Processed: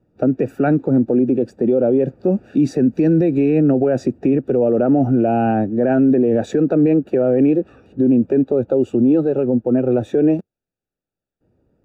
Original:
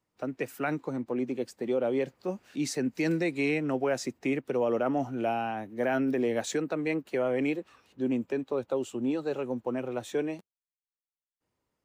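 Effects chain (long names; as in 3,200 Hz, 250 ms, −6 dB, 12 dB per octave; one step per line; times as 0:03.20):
moving average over 42 samples
boost into a limiter +30 dB
0:09.25–0:09.86: expander for the loud parts 1.5 to 1, over −19 dBFS
level −7 dB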